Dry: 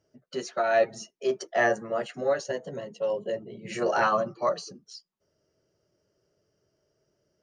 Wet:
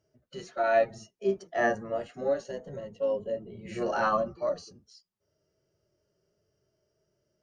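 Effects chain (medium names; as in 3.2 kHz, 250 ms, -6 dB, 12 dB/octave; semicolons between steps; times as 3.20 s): octave divider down 1 oct, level -5 dB; harmonic-percussive split percussive -13 dB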